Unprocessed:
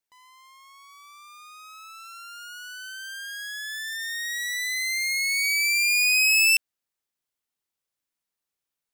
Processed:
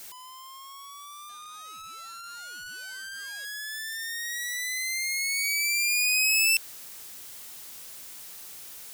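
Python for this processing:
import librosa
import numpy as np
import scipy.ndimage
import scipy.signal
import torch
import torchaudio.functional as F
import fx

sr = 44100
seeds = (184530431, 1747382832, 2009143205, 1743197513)

y = x + 0.5 * 10.0 ** (-35.0 / 20.0) * np.sign(x)
y = fx.high_shelf(y, sr, hz=4100.0, db=7.5)
y = fx.resample_linear(y, sr, factor=2, at=(1.29, 3.45))
y = y * 10.0 ** (-7.5 / 20.0)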